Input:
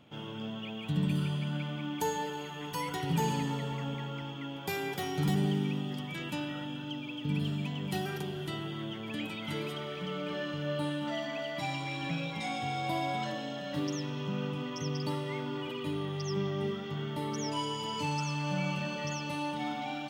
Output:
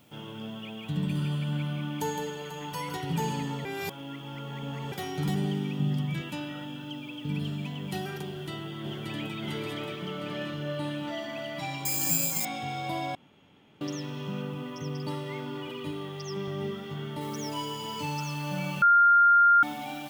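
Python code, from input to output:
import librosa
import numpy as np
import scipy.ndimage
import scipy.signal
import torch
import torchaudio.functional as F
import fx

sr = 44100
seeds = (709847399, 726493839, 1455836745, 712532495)

y = fx.echo_multitap(x, sr, ms=(163, 490), db=(-7.5, -13.0), at=(0.99, 2.97))
y = fx.peak_eq(y, sr, hz=140.0, db=12.5, octaves=1.1, at=(5.79, 6.21))
y = fx.echo_throw(y, sr, start_s=8.26, length_s=1.11, ms=580, feedback_pct=65, wet_db=-2.0)
y = fx.lowpass(y, sr, hz=9800.0, slope=12, at=(10.13, 11.18))
y = fx.resample_bad(y, sr, factor=6, down='filtered', up='zero_stuff', at=(11.85, 12.45))
y = fx.high_shelf(y, sr, hz=3500.0, db=-7.0, at=(14.42, 15.08))
y = fx.low_shelf(y, sr, hz=110.0, db=-12.0, at=(15.91, 16.48))
y = fx.noise_floor_step(y, sr, seeds[0], at_s=17.21, before_db=-67, after_db=-53, tilt_db=0.0)
y = fx.edit(y, sr, fx.reverse_span(start_s=3.65, length_s=1.27),
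    fx.room_tone_fill(start_s=13.15, length_s=0.66),
    fx.bleep(start_s=18.82, length_s=0.81, hz=1400.0, db=-15.5), tone=tone)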